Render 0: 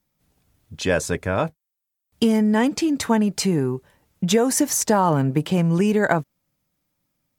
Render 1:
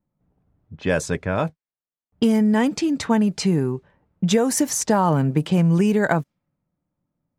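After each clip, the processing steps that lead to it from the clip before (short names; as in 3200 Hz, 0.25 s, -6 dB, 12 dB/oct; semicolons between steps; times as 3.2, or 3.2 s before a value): low-pass opened by the level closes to 990 Hz, open at -16.5 dBFS; bell 170 Hz +3.5 dB 0.74 oct; gain -1 dB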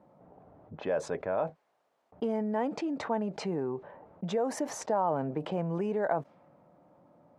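band-pass 670 Hz, Q 1.7; fast leveller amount 50%; gain -7 dB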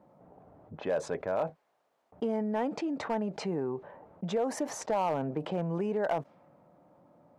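hard clip -22.5 dBFS, distortion -21 dB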